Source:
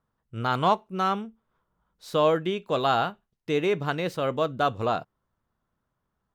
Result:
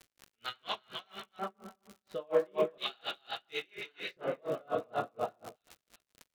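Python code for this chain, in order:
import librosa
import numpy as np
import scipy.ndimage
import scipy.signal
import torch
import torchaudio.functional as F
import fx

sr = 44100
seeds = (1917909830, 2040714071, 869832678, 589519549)

y = fx.high_shelf(x, sr, hz=6600.0, db=-11.0)
y = fx.echo_feedback(y, sr, ms=321, feedback_pct=20, wet_db=-3.5)
y = fx.room_shoebox(y, sr, seeds[0], volume_m3=160.0, walls='mixed', distance_m=1.4)
y = fx.filter_lfo_bandpass(y, sr, shape='square', hz=0.36, low_hz=770.0, high_hz=3900.0, q=0.86)
y = fx.graphic_eq(y, sr, hz=(1000, 2000, 4000), db=(-4, 5, 4))
y = fx.dmg_crackle(y, sr, seeds[1], per_s=130.0, level_db=-29.0)
y = fx.rotary(y, sr, hz=8.0)
y = y * 10.0 ** (-34 * (0.5 - 0.5 * np.cos(2.0 * np.pi * 4.2 * np.arange(len(y)) / sr)) / 20.0)
y = y * 10.0 ** (-3.5 / 20.0)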